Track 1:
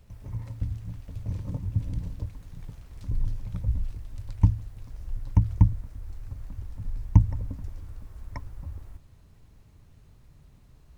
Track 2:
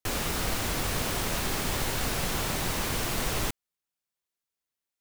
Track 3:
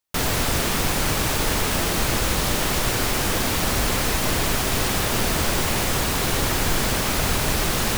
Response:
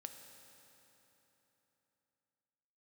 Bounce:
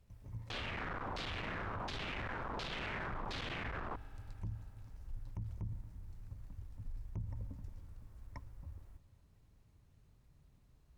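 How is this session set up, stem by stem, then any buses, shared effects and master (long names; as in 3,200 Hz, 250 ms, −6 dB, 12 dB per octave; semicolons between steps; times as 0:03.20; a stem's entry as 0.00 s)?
−9.0 dB, 0.00 s, send −9 dB, tube saturation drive 12 dB, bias 0.7
−4.0 dB, 0.45 s, send −12.5 dB, brickwall limiter −20.5 dBFS, peak gain reduction 4 dB; comparator with hysteresis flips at −35 dBFS; auto-filter low-pass saw down 1.4 Hz 890–4,400 Hz
muted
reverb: on, RT60 3.6 s, pre-delay 3 ms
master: brickwall limiter −34 dBFS, peak gain reduction 16.5 dB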